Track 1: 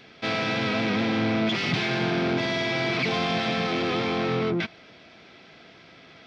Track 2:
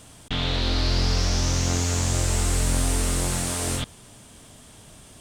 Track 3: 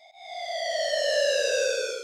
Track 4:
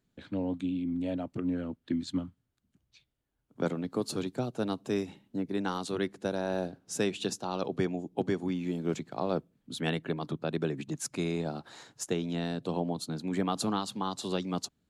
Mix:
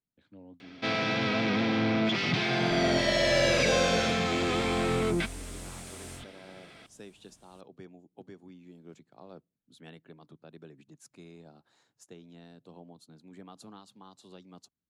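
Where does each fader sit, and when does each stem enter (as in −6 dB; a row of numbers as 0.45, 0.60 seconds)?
−2.5, −18.0, −2.5, −18.5 decibels; 0.60, 2.40, 2.15, 0.00 seconds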